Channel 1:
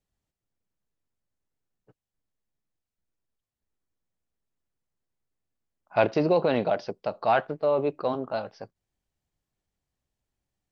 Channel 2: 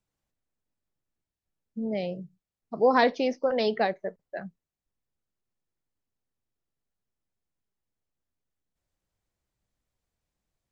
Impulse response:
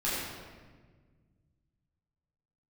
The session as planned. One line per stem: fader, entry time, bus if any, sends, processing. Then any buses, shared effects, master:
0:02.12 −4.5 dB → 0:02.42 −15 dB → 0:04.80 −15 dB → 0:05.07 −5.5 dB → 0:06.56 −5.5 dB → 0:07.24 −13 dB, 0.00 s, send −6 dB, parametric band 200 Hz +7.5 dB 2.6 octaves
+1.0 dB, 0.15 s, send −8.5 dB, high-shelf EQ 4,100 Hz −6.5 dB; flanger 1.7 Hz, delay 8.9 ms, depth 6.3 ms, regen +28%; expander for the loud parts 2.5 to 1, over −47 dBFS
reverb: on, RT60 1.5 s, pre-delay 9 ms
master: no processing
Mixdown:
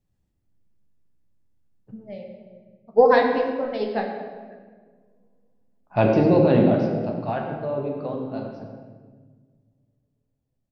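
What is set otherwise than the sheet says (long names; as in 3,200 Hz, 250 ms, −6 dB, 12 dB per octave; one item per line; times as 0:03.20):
stem 2 +1.0 dB → +9.0 dB
master: extra low-shelf EQ 220 Hz +8 dB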